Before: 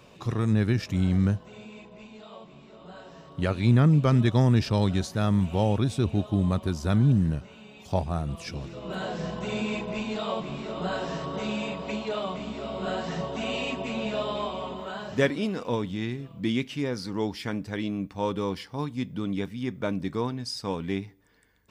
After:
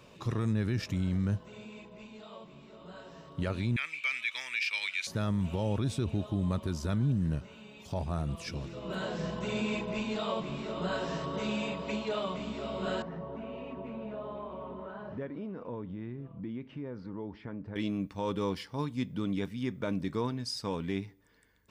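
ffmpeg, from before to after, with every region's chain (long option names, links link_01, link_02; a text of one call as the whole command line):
ffmpeg -i in.wav -filter_complex "[0:a]asettb=1/sr,asplit=3[link_01][link_02][link_03];[link_01]atrim=end=3.764[link_04];[link_02]atrim=start=3.76:end=5.07,asetpts=PTS-STARTPTS,afade=type=in:duration=0.004:curve=qsin,afade=type=out:start_time=1.306:duration=0.004:curve=qsin,highpass=frequency=2300:width_type=q:width=13,asoftclip=type=hard:threshold=-10dB[link_05];[link_03]atrim=start=5.066[link_06];[link_04][link_05]acrossfade=duration=0.004:curve1=hsin:curve2=qsin[link_07];[link_07][link_06]acrossfade=duration=0.004:curve1=qsin:curve2=hsin,asettb=1/sr,asplit=3[link_08][link_09][link_10];[link_08]atrim=end=13.024[link_11];[link_09]atrim=start=13.02:end=17.76,asetpts=PTS-STARTPTS,afade=type=in:duration=0.004:curve=qsin,afade=type=out:start_time=4.736:duration=0.004:curve=qsin,acompressor=threshold=-35dB:ratio=3:attack=3.2:release=140:knee=1:detection=peak,lowpass=1300[link_12];[link_10]atrim=start=17.756[link_13];[link_11][link_12]acrossfade=duration=0.004:curve1=hsin:curve2=qsin[link_14];[link_14][link_13]acrossfade=duration=0.004:curve1=qsin:curve2=hsin,alimiter=limit=-20dB:level=0:latency=1:release=27,bandreject=frequency=750:width=12,volume=-2.5dB" out.wav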